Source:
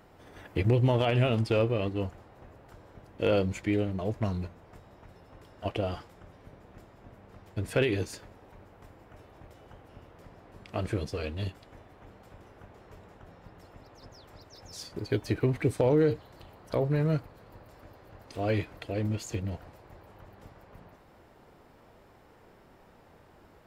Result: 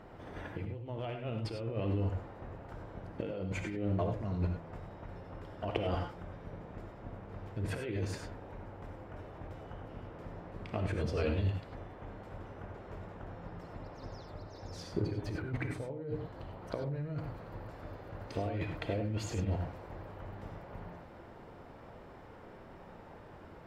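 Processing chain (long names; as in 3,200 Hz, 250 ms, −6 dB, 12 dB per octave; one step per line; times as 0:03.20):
low-pass filter 1,800 Hz 6 dB per octave, from 0:14.23 1,100 Hz, from 0:16.62 2,200 Hz
compressor whose output falls as the input rises −35 dBFS, ratio −1
reverb whose tail is shaped and stops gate 120 ms rising, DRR 4.5 dB
level −1.5 dB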